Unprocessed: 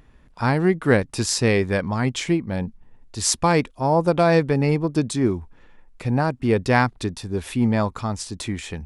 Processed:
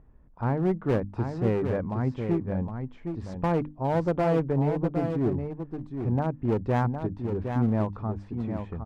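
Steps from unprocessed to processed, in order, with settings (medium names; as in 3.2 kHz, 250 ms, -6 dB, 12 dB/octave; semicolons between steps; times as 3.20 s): low-pass 1 kHz 12 dB/octave; bass shelf 140 Hz +5 dB; hum notches 50/100/150/200/250/300 Hz; one-sided clip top -18.5 dBFS, bottom -9 dBFS; delay 762 ms -7 dB; trim -6 dB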